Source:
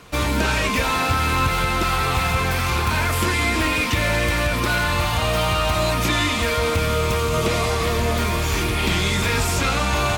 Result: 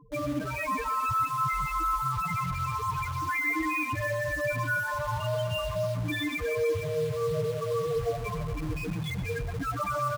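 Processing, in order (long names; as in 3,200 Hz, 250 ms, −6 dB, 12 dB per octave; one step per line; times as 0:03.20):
comb filter 6.8 ms, depth 65%
brickwall limiter −17.5 dBFS, peak gain reduction 10 dB
spectral peaks only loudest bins 4
in parallel at −3.5 dB: bit reduction 6 bits
on the sum: feedback echo with a band-pass in the loop 122 ms, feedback 77%, band-pass 1,100 Hz, level −9 dB
level −4 dB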